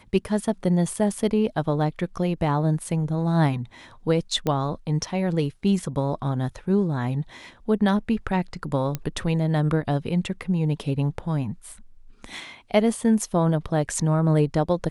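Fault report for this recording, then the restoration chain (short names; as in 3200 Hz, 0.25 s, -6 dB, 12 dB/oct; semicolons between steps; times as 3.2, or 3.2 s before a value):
4.47 pop -12 dBFS
8.95 pop -13 dBFS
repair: de-click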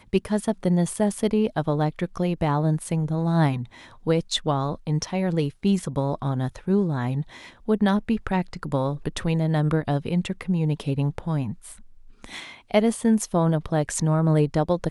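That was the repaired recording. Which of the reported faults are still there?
8.95 pop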